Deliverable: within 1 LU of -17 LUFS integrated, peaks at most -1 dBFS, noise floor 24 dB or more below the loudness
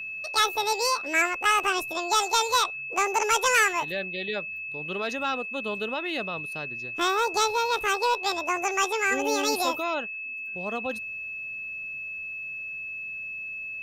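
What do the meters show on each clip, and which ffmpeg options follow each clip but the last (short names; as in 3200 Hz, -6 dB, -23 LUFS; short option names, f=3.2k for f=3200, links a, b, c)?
steady tone 2600 Hz; tone level -33 dBFS; loudness -26.5 LUFS; peak -13.5 dBFS; loudness target -17.0 LUFS
-> -af "bandreject=f=2.6k:w=30"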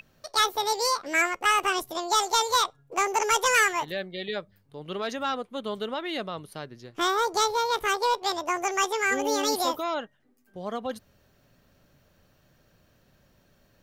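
steady tone none; loudness -26.0 LUFS; peak -14.0 dBFS; loudness target -17.0 LUFS
-> -af "volume=9dB"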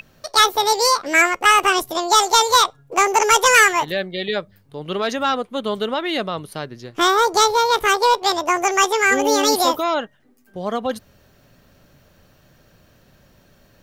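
loudness -17.0 LUFS; peak -5.0 dBFS; noise floor -55 dBFS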